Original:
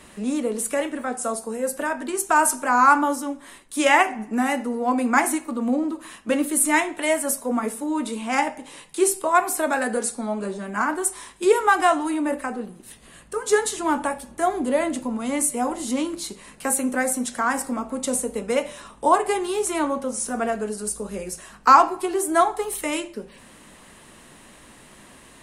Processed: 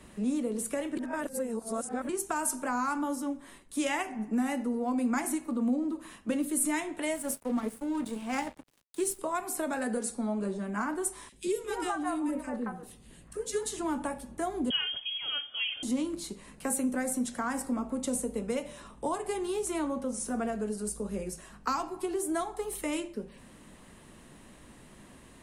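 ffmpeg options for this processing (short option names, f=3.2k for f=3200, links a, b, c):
-filter_complex "[0:a]asettb=1/sr,asplit=3[a][b][c];[a]atrim=end=7.154[d];[b]atrim=start=7.15:end=9.19,asetpts=PTS-STARTPTS,afade=t=in:d=0.004:c=qsin,afade=t=out:st=2.036:d=0.004:c=qsin,aeval=exprs='sgn(val(0))*max(abs(val(0))-0.0158,0)':c=same[e];[c]atrim=start=9.186[f];[d][e]acrossfade=d=0.004:c1=hsin:c2=qsin[g];[g][f]acrossfade=d=0.004:c1=qsin:c2=hsin,asettb=1/sr,asplit=3[h][i][j];[h]atrim=end=11.294[k];[i]atrim=start=11.29:end=13.63,asetpts=PTS-STARTPTS,afade=t=in:d=0.004:c=qsin,afade=t=out:st=2.336:d=0.004:c=qsin,acrossover=split=620|1900[l][m][n];[l]adelay=30[o];[m]adelay=220[p];[o][p][n]amix=inputs=3:normalize=0,atrim=end_sample=103194[q];[j]atrim=start=13.626[r];[k][q]acrossfade=d=0.004:c1=hsin:c2=qsin[s];[s][r]acrossfade=d=0.004:c1=qsin:c2=hsin,asettb=1/sr,asplit=3[t][u][v];[t]atrim=end=14.704[w];[u]atrim=start=14.7:end=15.83,asetpts=PTS-STARTPTS,afade=t=in:d=0.004:c=qsin,afade=t=out:st=1.126:d=0.004:c=qsin,lowpass=f=3k:t=q:w=0.5098,lowpass=f=3k:t=q:w=0.6013,lowpass=f=3k:t=q:w=0.9,lowpass=f=3k:t=q:w=2.563,afreqshift=-3500[x];[v]atrim=start=15.826[y];[w][x]acrossfade=d=0.004:c1=hsin:c2=qsin[z];[z][y]acrossfade=d=0.004:c1=qsin:c2=hsin,asplit=3[aa][ab][ac];[aa]atrim=end=0.972[ad];[ab]atrim=start=0.968:end=2.092,asetpts=PTS-STARTPTS,areverse[ae];[ac]atrim=start=2.088[af];[ad][ae]acrossfade=d=0.004:c1=hsin:c2=hsin[ag];[ag][af]acrossfade=d=0.004:c1=hsin:c2=hsin,lowshelf=f=430:g=9,acrossover=split=210|3000[ah][ai][aj];[ai]acompressor=threshold=-21dB:ratio=6[ak];[ah][ak][aj]amix=inputs=3:normalize=0,volume=-9dB"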